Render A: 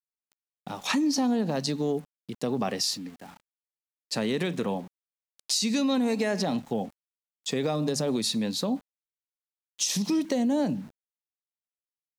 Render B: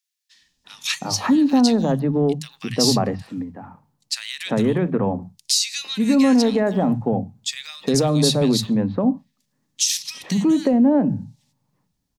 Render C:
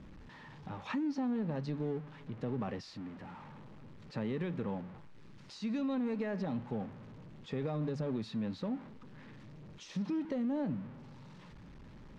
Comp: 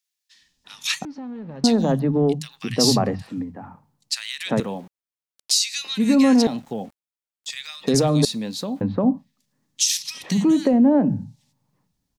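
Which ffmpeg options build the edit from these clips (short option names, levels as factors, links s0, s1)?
-filter_complex "[0:a]asplit=3[s0][s1][s2];[1:a]asplit=5[s3][s4][s5][s6][s7];[s3]atrim=end=1.052[s8];[2:a]atrim=start=1.048:end=1.642[s9];[s4]atrim=start=1.638:end=4.602[s10];[s0]atrim=start=4.598:end=5.512[s11];[s5]atrim=start=5.508:end=6.472[s12];[s1]atrim=start=6.468:end=7.502[s13];[s6]atrim=start=7.498:end=8.252[s14];[s2]atrim=start=8.248:end=8.812[s15];[s7]atrim=start=8.808[s16];[s8][s9]acrossfade=d=0.004:c1=hsin:c2=hsin[s17];[s17][s10]acrossfade=d=0.004:c1=hsin:c2=hsin[s18];[s18][s11]acrossfade=d=0.004:c1=hsin:c2=hsin[s19];[s19][s12]acrossfade=d=0.004:c1=hsin:c2=hsin[s20];[s20][s13]acrossfade=d=0.004:c1=hsin:c2=hsin[s21];[s21][s14]acrossfade=d=0.004:c1=hsin:c2=hsin[s22];[s22][s15]acrossfade=d=0.004:c1=hsin:c2=hsin[s23];[s23][s16]acrossfade=d=0.004:c1=hsin:c2=hsin"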